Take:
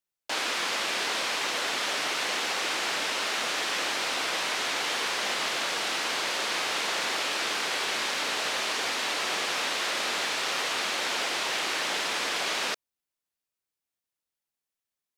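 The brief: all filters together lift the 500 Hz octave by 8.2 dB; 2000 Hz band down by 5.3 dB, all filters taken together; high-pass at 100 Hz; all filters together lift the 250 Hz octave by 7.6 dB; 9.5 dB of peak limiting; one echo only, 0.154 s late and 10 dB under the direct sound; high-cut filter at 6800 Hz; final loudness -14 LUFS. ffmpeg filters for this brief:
-af "highpass=100,lowpass=6.8k,equalizer=f=250:t=o:g=6.5,equalizer=f=500:t=o:g=9,equalizer=f=2k:t=o:g=-7.5,alimiter=level_in=1dB:limit=-24dB:level=0:latency=1,volume=-1dB,aecho=1:1:154:0.316,volume=19dB"

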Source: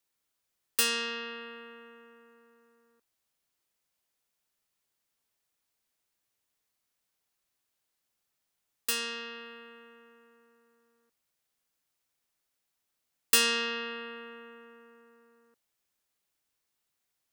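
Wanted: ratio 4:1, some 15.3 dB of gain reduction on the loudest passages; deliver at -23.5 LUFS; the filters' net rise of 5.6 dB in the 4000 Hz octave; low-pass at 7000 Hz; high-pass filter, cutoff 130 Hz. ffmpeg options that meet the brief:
-af "highpass=130,lowpass=7k,equalizer=f=4k:t=o:g=8,acompressor=threshold=-36dB:ratio=4,volume=15.5dB"

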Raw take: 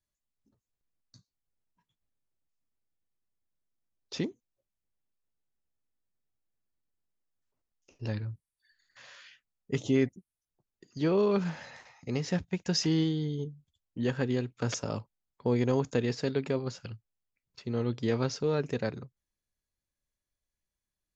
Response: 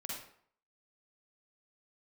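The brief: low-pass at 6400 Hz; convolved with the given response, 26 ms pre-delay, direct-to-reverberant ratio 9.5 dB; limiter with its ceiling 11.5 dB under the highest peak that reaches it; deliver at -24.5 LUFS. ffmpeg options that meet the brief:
-filter_complex "[0:a]lowpass=6.4k,alimiter=level_in=2dB:limit=-24dB:level=0:latency=1,volume=-2dB,asplit=2[a][b];[1:a]atrim=start_sample=2205,adelay=26[c];[b][c]afir=irnorm=-1:irlink=0,volume=-9dB[d];[a][d]amix=inputs=2:normalize=0,volume=13dB"

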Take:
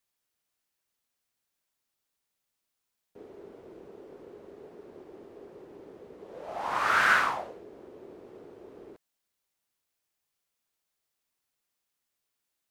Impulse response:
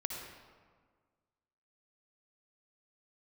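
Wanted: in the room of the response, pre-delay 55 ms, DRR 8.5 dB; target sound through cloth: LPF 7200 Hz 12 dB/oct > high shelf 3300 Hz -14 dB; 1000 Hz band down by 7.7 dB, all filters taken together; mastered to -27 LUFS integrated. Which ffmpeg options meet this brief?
-filter_complex "[0:a]equalizer=f=1k:t=o:g=-8.5,asplit=2[a][b];[1:a]atrim=start_sample=2205,adelay=55[c];[b][c]afir=irnorm=-1:irlink=0,volume=-10dB[d];[a][d]amix=inputs=2:normalize=0,lowpass=7.2k,highshelf=f=3.3k:g=-14,volume=6.5dB"

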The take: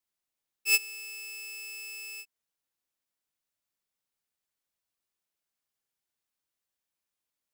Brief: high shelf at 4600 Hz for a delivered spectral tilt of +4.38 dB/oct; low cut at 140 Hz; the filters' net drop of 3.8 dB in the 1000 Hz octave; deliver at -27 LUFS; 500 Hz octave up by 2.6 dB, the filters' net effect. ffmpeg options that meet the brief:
-af "highpass=140,equalizer=f=500:t=o:g=4,equalizer=f=1k:t=o:g=-6.5,highshelf=f=4.6k:g=9"

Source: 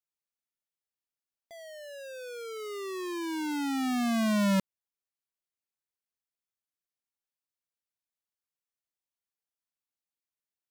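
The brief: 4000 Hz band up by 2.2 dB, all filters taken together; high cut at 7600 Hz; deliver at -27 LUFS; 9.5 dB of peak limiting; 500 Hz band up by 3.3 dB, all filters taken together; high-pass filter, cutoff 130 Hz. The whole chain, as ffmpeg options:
-af "highpass=130,lowpass=7.6k,equalizer=f=500:t=o:g=4.5,equalizer=f=4k:t=o:g=3,volume=7.5dB,alimiter=limit=-17dB:level=0:latency=1"

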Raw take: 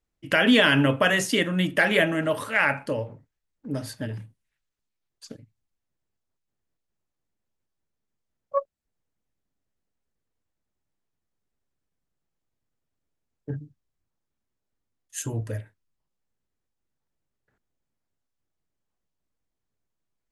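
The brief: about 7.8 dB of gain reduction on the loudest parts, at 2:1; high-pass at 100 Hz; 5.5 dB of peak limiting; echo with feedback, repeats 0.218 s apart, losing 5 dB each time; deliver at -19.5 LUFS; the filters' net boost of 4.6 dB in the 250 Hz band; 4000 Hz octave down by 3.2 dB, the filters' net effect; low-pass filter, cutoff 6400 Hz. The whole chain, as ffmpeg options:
-af "highpass=100,lowpass=6.4k,equalizer=f=250:t=o:g=5.5,equalizer=f=4k:t=o:g=-4.5,acompressor=threshold=-24dB:ratio=2,alimiter=limit=-17dB:level=0:latency=1,aecho=1:1:218|436|654|872|1090|1308|1526:0.562|0.315|0.176|0.0988|0.0553|0.031|0.0173,volume=9dB"

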